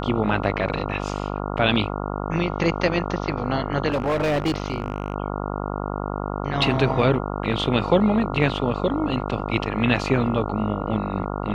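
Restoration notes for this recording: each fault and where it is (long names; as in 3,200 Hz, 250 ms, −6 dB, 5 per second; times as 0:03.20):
mains buzz 50 Hz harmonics 28 −28 dBFS
0:03.89–0:05.14: clipping −18 dBFS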